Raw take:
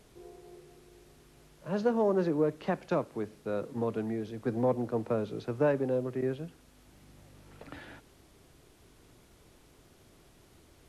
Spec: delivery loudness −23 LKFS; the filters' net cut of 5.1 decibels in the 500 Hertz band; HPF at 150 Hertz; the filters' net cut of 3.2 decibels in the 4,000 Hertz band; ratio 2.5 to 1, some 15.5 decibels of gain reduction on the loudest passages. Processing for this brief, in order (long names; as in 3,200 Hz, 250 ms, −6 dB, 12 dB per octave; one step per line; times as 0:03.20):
high-pass filter 150 Hz
parametric band 500 Hz −6 dB
parametric band 4,000 Hz −4 dB
downward compressor 2.5 to 1, threshold −51 dBFS
level +27 dB